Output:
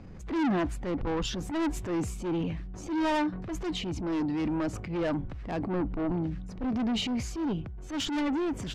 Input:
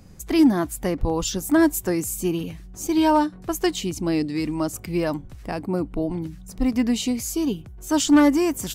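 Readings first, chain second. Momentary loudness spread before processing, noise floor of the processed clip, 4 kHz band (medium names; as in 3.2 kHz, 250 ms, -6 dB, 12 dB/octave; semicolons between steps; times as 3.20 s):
11 LU, -41 dBFS, -5.5 dB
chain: low-pass 2.7 kHz 12 dB/octave; saturation -26 dBFS, distortion -5 dB; transient shaper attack -8 dB, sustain +5 dB; gain riding 2 s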